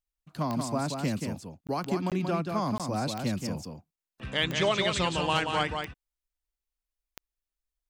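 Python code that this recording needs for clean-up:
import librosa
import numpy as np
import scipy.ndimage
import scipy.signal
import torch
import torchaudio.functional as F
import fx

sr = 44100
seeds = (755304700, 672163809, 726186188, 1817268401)

y = fx.fix_declip(x, sr, threshold_db=-15.0)
y = fx.fix_declick_ar(y, sr, threshold=10.0)
y = fx.fix_interpolate(y, sr, at_s=(1.67, 2.1, 2.78, 3.96), length_ms=17.0)
y = fx.fix_echo_inverse(y, sr, delay_ms=181, level_db=-5.5)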